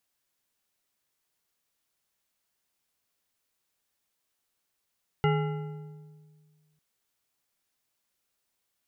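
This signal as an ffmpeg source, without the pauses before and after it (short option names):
-f lavfi -i "aevalsrc='0.0794*pow(10,-3*t/1.93)*sin(2*PI*153*t)+0.0562*pow(10,-3*t/1.424)*sin(2*PI*421.8*t)+0.0398*pow(10,-3*t/1.163)*sin(2*PI*826.8*t)+0.0282*pow(10,-3*t/1.001)*sin(2*PI*1366.7*t)+0.02*pow(10,-3*t/0.887)*sin(2*PI*2041*t)+0.0141*pow(10,-3*t/0.802)*sin(2*PI*2851.9*t)':d=1.55:s=44100"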